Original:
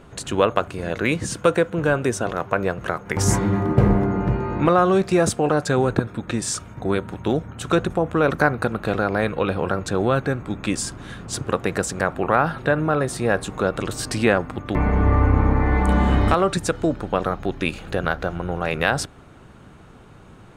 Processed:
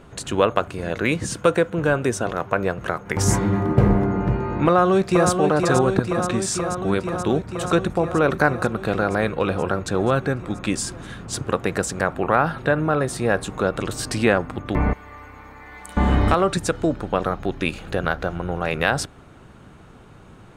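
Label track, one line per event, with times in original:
4.660000	5.300000	echo throw 0.48 s, feedback 80%, level -5.5 dB
14.930000	15.970000	pre-emphasis coefficient 0.97

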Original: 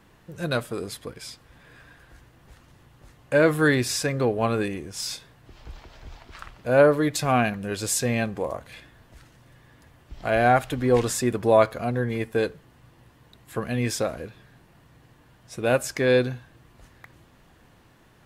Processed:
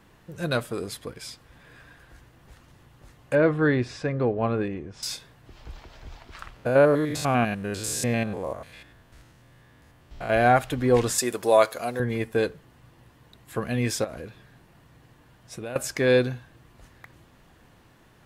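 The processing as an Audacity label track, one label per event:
3.350000	5.030000	tape spacing loss at 10 kHz 28 dB
6.560000	10.300000	stepped spectrum every 0.1 s
11.180000	12.000000	tone controls bass -14 dB, treble +10 dB
14.040000	15.760000	compressor, threshold -32 dBFS

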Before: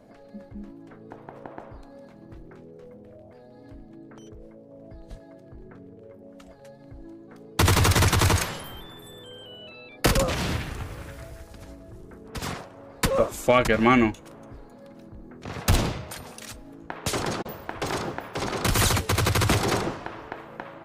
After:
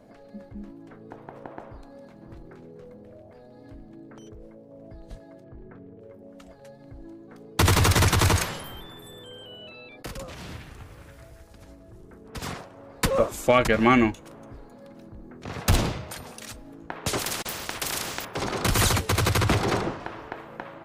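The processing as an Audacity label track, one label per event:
1.670000	2.280000	echo throw 0.54 s, feedback 60%, level -10 dB
5.440000	6.000000	LPF 2900 Hz
10.030000	13.170000	fade in, from -17.5 dB
17.190000	18.250000	spectral compressor 4:1
19.400000	20.000000	high shelf 5900 Hz -9.5 dB

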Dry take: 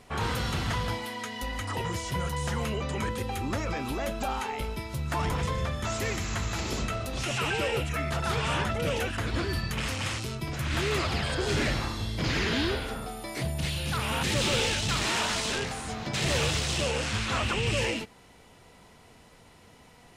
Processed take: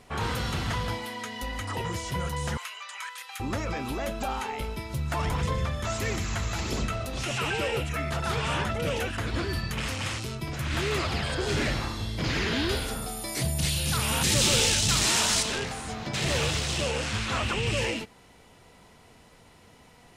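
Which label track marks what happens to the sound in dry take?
2.570000	3.400000	HPF 1100 Hz 24 dB/oct
4.900000	7.050000	phaser 1.6 Hz, delay 1.9 ms, feedback 25%
12.690000	15.430000	tone controls bass +3 dB, treble +11 dB

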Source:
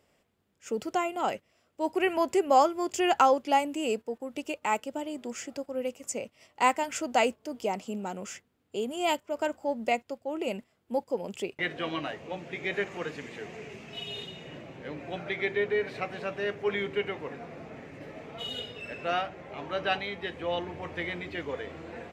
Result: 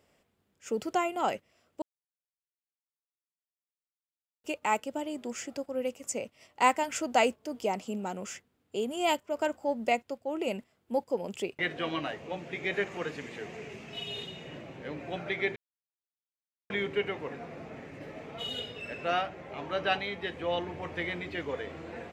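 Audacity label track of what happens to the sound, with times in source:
1.820000	4.440000	mute
15.560000	16.700000	mute

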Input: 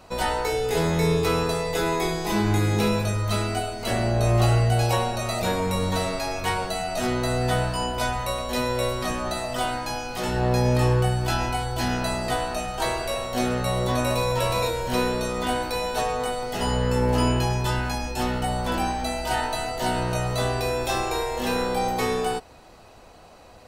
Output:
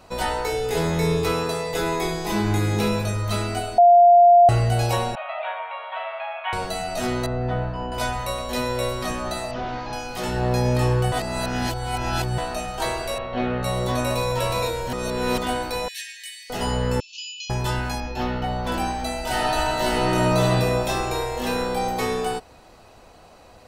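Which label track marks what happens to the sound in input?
1.320000	1.740000	HPF 140 Hz 6 dB/oct
3.780000	4.490000	bleep 699 Hz -8.5 dBFS
5.150000	6.530000	Chebyshev band-pass 600–3300 Hz, order 5
7.260000	7.920000	tape spacing loss at 10 kHz 39 dB
9.510000	9.930000	delta modulation 32 kbps, step -43 dBFS
11.120000	12.380000	reverse
13.180000	13.630000	LPF 3200 Hz 24 dB/oct
14.930000	15.380000	reverse
15.880000	16.500000	brick-wall FIR high-pass 1600 Hz
17.000000	17.500000	brick-wall FIR band-pass 2400–7300 Hz
18.000000	18.670000	running mean over 5 samples
19.200000	20.450000	reverb throw, RT60 2.6 s, DRR -3.5 dB

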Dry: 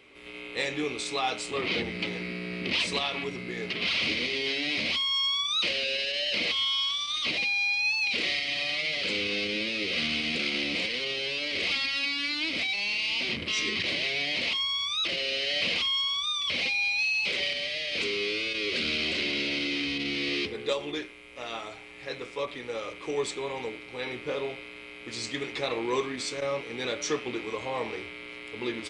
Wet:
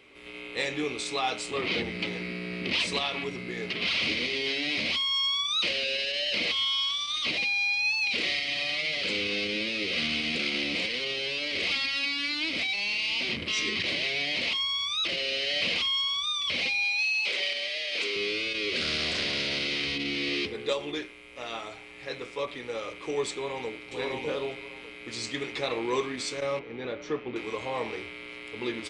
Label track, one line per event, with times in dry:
16.840000	18.160000	HPF 380 Hz
18.790000	19.950000	spectral limiter ceiling under each frame's peak by 13 dB
23.310000	23.890000	echo throw 0.6 s, feedback 20%, level -2 dB
26.590000	27.360000	tape spacing loss at 10 kHz 32 dB

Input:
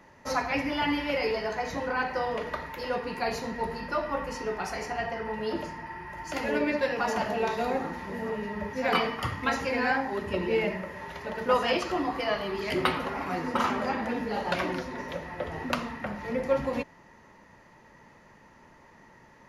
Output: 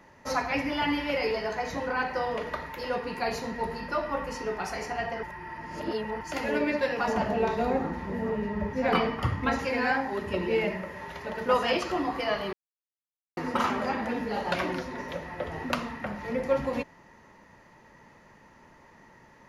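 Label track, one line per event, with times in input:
5.230000	6.210000	reverse
7.080000	9.590000	tilt -2 dB/oct
12.530000	13.370000	mute

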